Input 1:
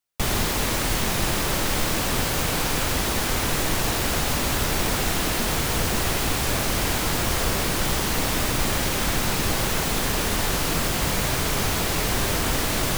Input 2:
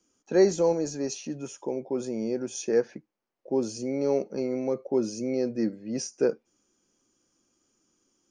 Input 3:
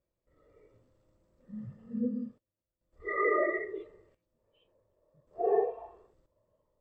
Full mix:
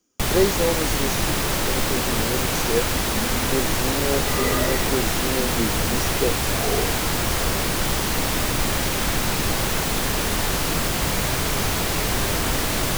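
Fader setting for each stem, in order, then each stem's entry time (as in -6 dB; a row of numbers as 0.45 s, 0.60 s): +1.0 dB, +0.5 dB, +0.5 dB; 0.00 s, 0.00 s, 1.20 s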